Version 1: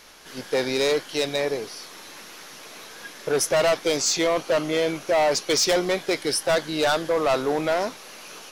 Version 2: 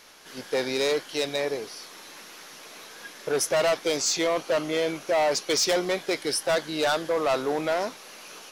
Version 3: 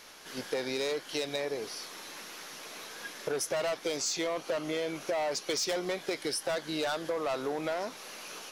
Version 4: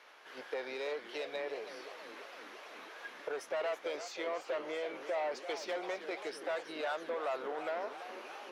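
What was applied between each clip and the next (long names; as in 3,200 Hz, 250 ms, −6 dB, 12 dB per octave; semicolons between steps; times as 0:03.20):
low-shelf EQ 100 Hz −8.5 dB; level −2.5 dB
downward compressor, threshold −30 dBFS, peak gain reduction 9 dB
three-way crossover with the lows and the highs turned down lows −22 dB, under 380 Hz, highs −18 dB, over 3,100 Hz; feedback echo with a swinging delay time 331 ms, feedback 68%, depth 208 cents, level −11.5 dB; level −3 dB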